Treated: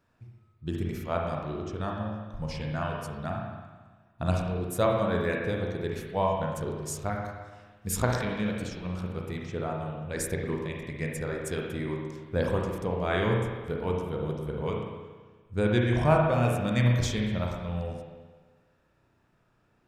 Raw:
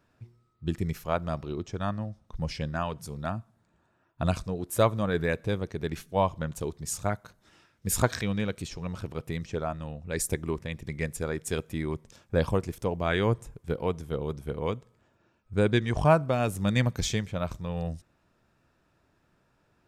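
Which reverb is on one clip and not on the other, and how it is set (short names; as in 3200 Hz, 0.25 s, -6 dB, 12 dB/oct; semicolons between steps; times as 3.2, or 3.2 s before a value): spring tank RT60 1.4 s, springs 33/57 ms, chirp 65 ms, DRR -1 dB; gain -3.5 dB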